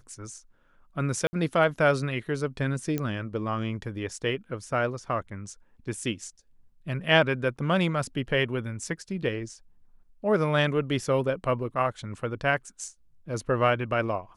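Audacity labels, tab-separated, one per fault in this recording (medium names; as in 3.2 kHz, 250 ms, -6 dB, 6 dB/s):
1.270000	1.330000	dropout 60 ms
2.980000	2.980000	pop -16 dBFS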